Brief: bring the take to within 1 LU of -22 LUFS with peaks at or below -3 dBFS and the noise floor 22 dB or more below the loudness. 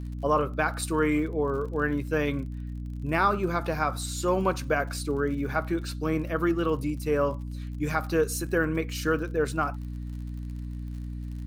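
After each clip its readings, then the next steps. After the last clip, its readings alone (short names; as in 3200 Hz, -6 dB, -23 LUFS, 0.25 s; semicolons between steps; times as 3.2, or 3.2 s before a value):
ticks 49/s; hum 60 Hz; harmonics up to 300 Hz; hum level -32 dBFS; loudness -28.5 LUFS; peak -10.5 dBFS; loudness target -22.0 LUFS
-> de-click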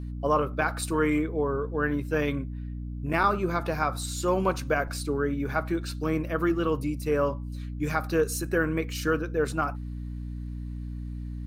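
ticks 0.087/s; hum 60 Hz; harmonics up to 300 Hz; hum level -32 dBFS
-> de-hum 60 Hz, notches 5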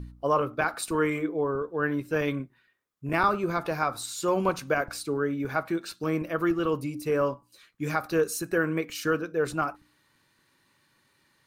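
hum none; loudness -28.5 LUFS; peak -11.0 dBFS; loudness target -22.0 LUFS
-> gain +6.5 dB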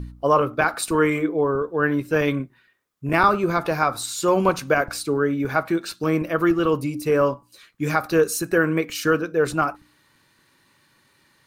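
loudness -22.0 LUFS; peak -4.5 dBFS; noise floor -62 dBFS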